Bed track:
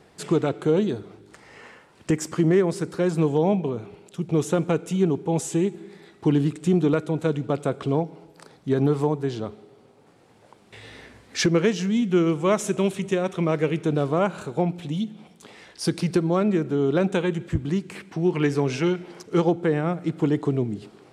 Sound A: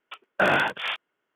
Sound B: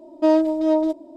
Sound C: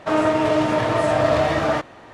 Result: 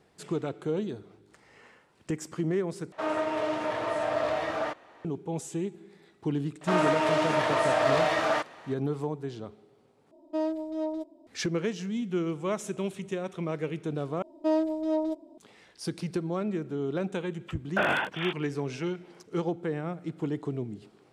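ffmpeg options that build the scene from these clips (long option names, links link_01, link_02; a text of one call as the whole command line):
ffmpeg -i bed.wav -i cue0.wav -i cue1.wav -i cue2.wav -filter_complex "[3:a]asplit=2[link_01][link_02];[2:a]asplit=2[link_03][link_04];[0:a]volume=-9.5dB[link_05];[link_01]bass=frequency=250:gain=-12,treble=frequency=4000:gain=-3[link_06];[link_02]highpass=frequency=700:poles=1[link_07];[link_05]asplit=4[link_08][link_09][link_10][link_11];[link_08]atrim=end=2.924[link_12];[link_06]atrim=end=2.13,asetpts=PTS-STARTPTS,volume=-9.5dB[link_13];[link_09]atrim=start=5.046:end=10.114[link_14];[link_03]atrim=end=1.16,asetpts=PTS-STARTPTS,volume=-13dB[link_15];[link_10]atrim=start=11.266:end=14.224[link_16];[link_04]atrim=end=1.16,asetpts=PTS-STARTPTS,volume=-9dB[link_17];[link_11]atrim=start=15.376[link_18];[link_07]atrim=end=2.13,asetpts=PTS-STARTPTS,volume=-2.5dB,afade=type=in:duration=0.004:curve=hsin,afade=type=out:start_time=2.126:duration=0.004:curve=hsin,adelay=6610[link_19];[1:a]atrim=end=1.35,asetpts=PTS-STARTPTS,volume=-5dB,afade=type=in:duration=0.004:curve=hsin,afade=type=out:start_time=1.346:duration=0.004:curve=hsin,adelay=17370[link_20];[link_12][link_13]acrossfade=duration=0.004:curve1=hsin:curve2=hsin[link_21];[link_21][link_14]acrossfade=duration=0.004:curve1=hsin:curve2=hsin[link_22];[link_22][link_15]acrossfade=duration=0.004:curve1=hsin:curve2=hsin[link_23];[link_23][link_16]acrossfade=duration=0.004:curve1=hsin:curve2=hsin[link_24];[link_24][link_17]acrossfade=duration=0.004:curve1=hsin:curve2=hsin[link_25];[link_25][link_18]acrossfade=duration=0.004:curve1=hsin:curve2=hsin[link_26];[link_26][link_19][link_20]amix=inputs=3:normalize=0" out.wav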